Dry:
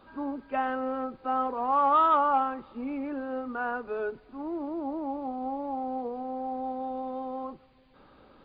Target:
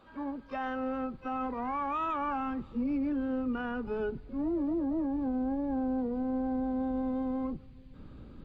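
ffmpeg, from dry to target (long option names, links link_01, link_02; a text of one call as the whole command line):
ffmpeg -i in.wav -filter_complex "[0:a]asubboost=boost=10:cutoff=220,asplit=2[link_01][link_02];[link_02]asetrate=88200,aresample=44100,atempo=0.5,volume=-17dB[link_03];[link_01][link_03]amix=inputs=2:normalize=0,alimiter=limit=-22.5dB:level=0:latency=1,volume=-3dB" out.wav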